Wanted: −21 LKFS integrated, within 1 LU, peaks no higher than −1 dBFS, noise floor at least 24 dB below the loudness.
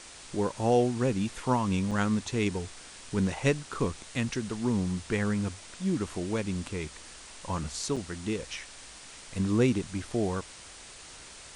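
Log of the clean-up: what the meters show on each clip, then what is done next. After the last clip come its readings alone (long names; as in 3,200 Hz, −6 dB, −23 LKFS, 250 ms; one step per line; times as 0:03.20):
number of dropouts 2; longest dropout 5.8 ms; background noise floor −48 dBFS; target noise floor −55 dBFS; integrated loudness −30.5 LKFS; sample peak −11.0 dBFS; target loudness −21.0 LKFS
→ repair the gap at 0:01.91/0:07.96, 5.8 ms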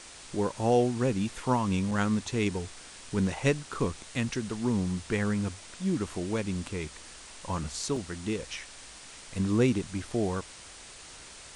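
number of dropouts 0; background noise floor −48 dBFS; target noise floor −55 dBFS
→ broadband denoise 7 dB, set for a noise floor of −48 dBFS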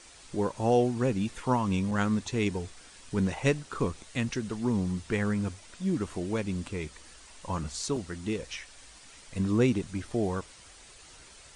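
background noise floor −53 dBFS; target noise floor −55 dBFS
→ broadband denoise 6 dB, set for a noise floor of −53 dBFS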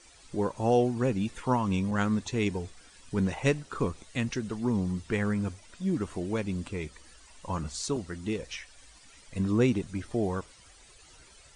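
background noise floor −56 dBFS; integrated loudness −30.5 LKFS; sample peak −11.5 dBFS; target loudness −21.0 LKFS
→ level +9.5 dB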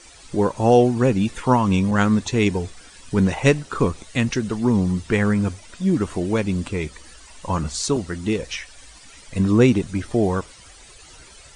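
integrated loudness −21.0 LKFS; sample peak −2.0 dBFS; background noise floor −46 dBFS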